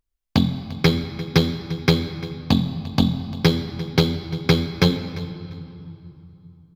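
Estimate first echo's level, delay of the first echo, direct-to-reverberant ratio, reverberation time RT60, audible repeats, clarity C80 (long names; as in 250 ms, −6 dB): −18.0 dB, 347 ms, 7.5 dB, 2.8 s, 2, 10.5 dB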